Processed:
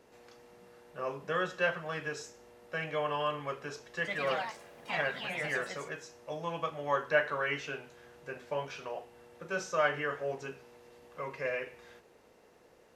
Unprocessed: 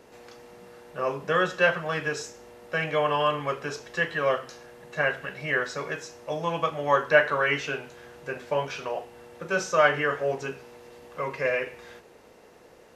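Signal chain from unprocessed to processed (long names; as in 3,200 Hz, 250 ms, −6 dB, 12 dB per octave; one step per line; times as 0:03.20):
0:03.86–0:06.13: delay with pitch and tempo change per echo 120 ms, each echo +3 semitones, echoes 3
level −8.5 dB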